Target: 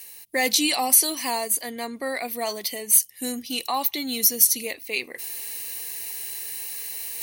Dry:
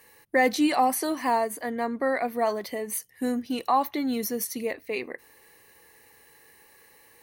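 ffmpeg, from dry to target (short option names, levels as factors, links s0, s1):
-af "areverse,acompressor=mode=upward:threshold=0.0178:ratio=2.5,areverse,aexciter=amount=6.9:drive=3.4:freq=2300,volume=0.631"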